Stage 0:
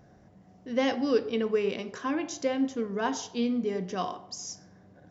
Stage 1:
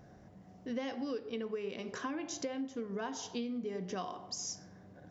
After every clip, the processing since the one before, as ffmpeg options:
-af "acompressor=threshold=0.0178:ratio=10"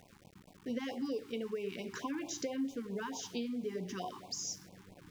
-af "flanger=delay=5.1:depth=3.2:regen=85:speed=0.62:shape=triangular,aeval=exprs='val(0)*gte(abs(val(0)),0.00133)':c=same,afftfilt=real='re*(1-between(b*sr/1024,540*pow(1600/540,0.5+0.5*sin(2*PI*4.5*pts/sr))/1.41,540*pow(1600/540,0.5+0.5*sin(2*PI*4.5*pts/sr))*1.41))':imag='im*(1-between(b*sr/1024,540*pow(1600/540,0.5+0.5*sin(2*PI*4.5*pts/sr))/1.41,540*pow(1600/540,0.5+0.5*sin(2*PI*4.5*pts/sr))*1.41))':win_size=1024:overlap=0.75,volume=1.78"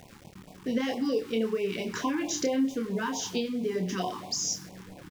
-filter_complex "[0:a]asplit=2[s0][s1];[s1]adelay=27,volume=0.562[s2];[s0][s2]amix=inputs=2:normalize=0,volume=2.66"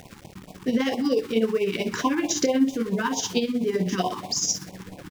-af "tremolo=f=16:d=0.58,volume=2.51"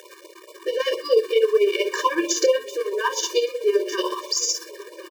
-af "aecho=1:1:1048:0.075,afftfilt=real='re*eq(mod(floor(b*sr/1024/310),2),1)':imag='im*eq(mod(floor(b*sr/1024/310),2),1)':win_size=1024:overlap=0.75,volume=2.11"

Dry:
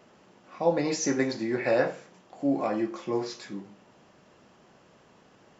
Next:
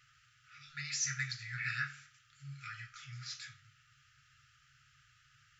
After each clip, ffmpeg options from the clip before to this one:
-af "afftfilt=real='re*(1-between(b*sr/4096,150,1200))':imag='im*(1-between(b*sr/4096,150,1200))':win_size=4096:overlap=0.75,volume=0.75"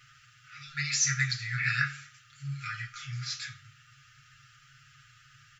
-af "aecho=1:1:7.3:0.65,volume=2.24"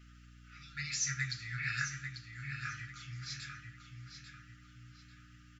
-filter_complex "[0:a]aeval=exprs='val(0)+0.00398*(sin(2*PI*60*n/s)+sin(2*PI*2*60*n/s)/2+sin(2*PI*3*60*n/s)/3+sin(2*PI*4*60*n/s)/4+sin(2*PI*5*60*n/s)/5)':c=same,asplit=2[s0][s1];[s1]adelay=843,lowpass=f=4800:p=1,volume=0.473,asplit=2[s2][s3];[s3]adelay=843,lowpass=f=4800:p=1,volume=0.38,asplit=2[s4][s5];[s5]adelay=843,lowpass=f=4800:p=1,volume=0.38,asplit=2[s6][s7];[s7]adelay=843,lowpass=f=4800:p=1,volume=0.38[s8];[s0][s2][s4][s6][s8]amix=inputs=5:normalize=0,volume=0.398"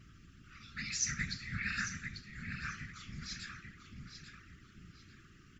-af "afftfilt=real='hypot(re,im)*cos(2*PI*random(0))':imag='hypot(re,im)*sin(2*PI*random(1))':win_size=512:overlap=0.75,volume=1.88"

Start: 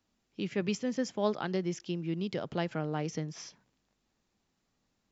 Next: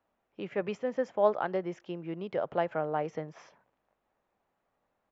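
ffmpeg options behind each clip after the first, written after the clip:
-af "firequalizer=gain_entry='entry(230,0);entry(570,15);entry(4700,-10)':delay=0.05:min_phase=1,volume=0.447"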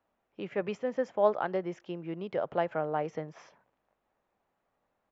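-af anull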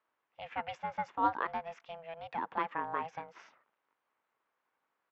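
-af "aeval=exprs='val(0)*sin(2*PI*330*n/s)':c=same,bandpass=f=1900:t=q:w=0.59:csg=0,volume=1.41"

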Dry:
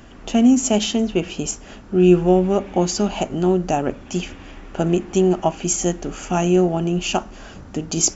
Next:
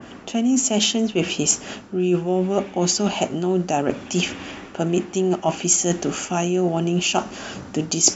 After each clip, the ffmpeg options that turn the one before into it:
-af "highpass=130,areverse,acompressor=threshold=0.0631:ratio=6,areverse,adynamicequalizer=threshold=0.00631:dfrequency=2300:dqfactor=0.7:tfrequency=2300:tqfactor=0.7:attack=5:release=100:ratio=0.375:range=2:mode=boostabove:tftype=highshelf,volume=2.11"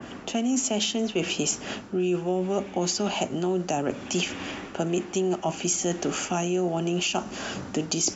-filter_complex "[0:a]acrossover=split=85|330|6400[s0][s1][s2][s3];[s0]acompressor=threshold=0.00224:ratio=4[s4];[s1]acompressor=threshold=0.0282:ratio=4[s5];[s2]acompressor=threshold=0.0501:ratio=4[s6];[s3]acompressor=threshold=0.0126:ratio=4[s7];[s4][s5][s6][s7]amix=inputs=4:normalize=0"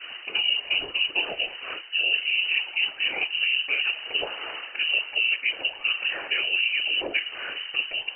-af "afftfilt=real='hypot(re,im)*cos(2*PI*random(0))':imag='hypot(re,im)*sin(2*PI*random(1))':win_size=512:overlap=0.75,lowpass=f=2600:t=q:w=0.5098,lowpass=f=2600:t=q:w=0.6013,lowpass=f=2600:t=q:w=0.9,lowpass=f=2600:t=q:w=2.563,afreqshift=-3100,lowshelf=f=270:t=q:w=1.5:g=-8.5,volume=2.24"

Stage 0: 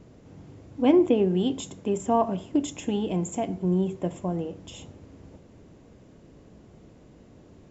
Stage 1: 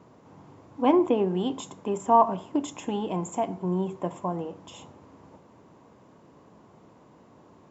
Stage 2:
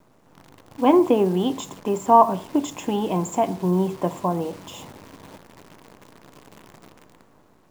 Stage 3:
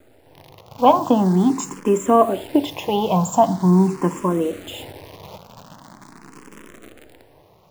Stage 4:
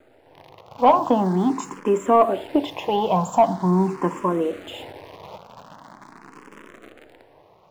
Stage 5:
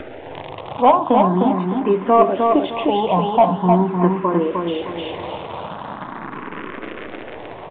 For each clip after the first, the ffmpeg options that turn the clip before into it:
-af "highpass=120,equalizer=f=1000:t=o:w=0.88:g=14,volume=0.668"
-af "dynaudnorm=f=110:g=13:m=2.11,acrusher=bits=8:dc=4:mix=0:aa=0.000001"
-filter_complex "[0:a]asplit=2[s0][s1];[s1]afreqshift=0.43[s2];[s0][s2]amix=inputs=2:normalize=1,volume=2.51"
-filter_complex "[0:a]asplit=2[s0][s1];[s1]highpass=f=720:p=1,volume=3.55,asoftclip=type=tanh:threshold=0.891[s2];[s0][s2]amix=inputs=2:normalize=0,lowpass=f=1500:p=1,volume=0.501,volume=0.75"
-af "aecho=1:1:306|612|918|1224:0.631|0.17|0.046|0.0124,acompressor=mode=upward:threshold=0.0891:ratio=2.5,aresample=8000,aresample=44100,volume=1.33"

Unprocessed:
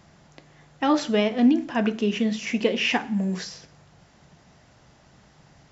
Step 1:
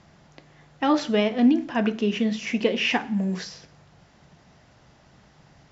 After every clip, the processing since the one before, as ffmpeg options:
-af "lowpass=6400"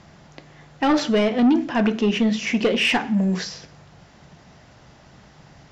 -af "asoftclip=type=tanh:threshold=0.126,volume=2"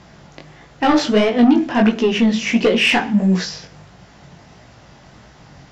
-af "flanger=delay=16:depth=6.4:speed=1.5,volume=2.37"

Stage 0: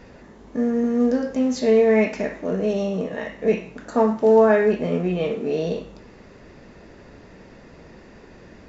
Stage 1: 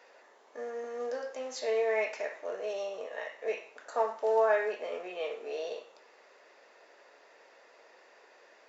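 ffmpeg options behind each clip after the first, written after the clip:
-af "highpass=f=520:w=0.5412,highpass=f=520:w=1.3066,volume=0.447"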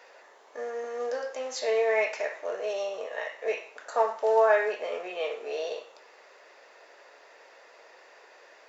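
-af "equalizer=f=220:t=o:w=1.3:g=-7,volume=1.88"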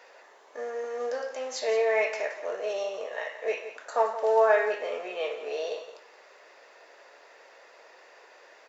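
-af "aecho=1:1:172:0.237"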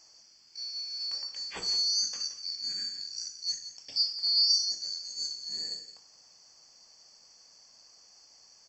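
-af "afftfilt=real='real(if(lt(b,736),b+184*(1-2*mod(floor(b/184),2)),b),0)':imag='imag(if(lt(b,736),b+184*(1-2*mod(floor(b/184),2)),b),0)':win_size=2048:overlap=0.75,volume=0.631"

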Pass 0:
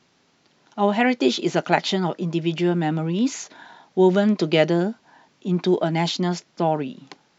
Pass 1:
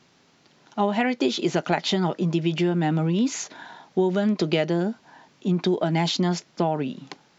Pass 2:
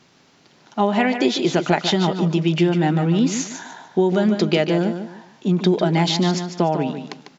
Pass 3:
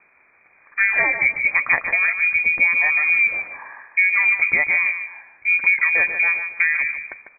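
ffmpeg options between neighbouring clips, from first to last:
-af "equalizer=f=140:t=o:w=0.77:g=2,acompressor=threshold=0.0891:ratio=6,volume=1.33"
-af "aecho=1:1:148|296|444:0.376|0.101|0.0274,volume=1.58"
-af "lowpass=f=2200:t=q:w=0.5098,lowpass=f=2200:t=q:w=0.6013,lowpass=f=2200:t=q:w=0.9,lowpass=f=2200:t=q:w=2.563,afreqshift=-2600"

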